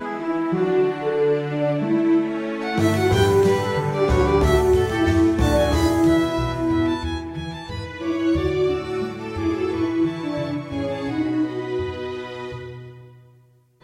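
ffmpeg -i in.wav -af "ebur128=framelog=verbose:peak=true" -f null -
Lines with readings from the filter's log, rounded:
Integrated loudness:
  I:         -21.3 LUFS
  Threshold: -31.7 LUFS
Loudness range:
  LRA:         7.1 LU
  Threshold: -41.3 LUFS
  LRA low:   -25.6 LUFS
  LRA high:  -18.5 LUFS
True peak:
  Peak:       -5.7 dBFS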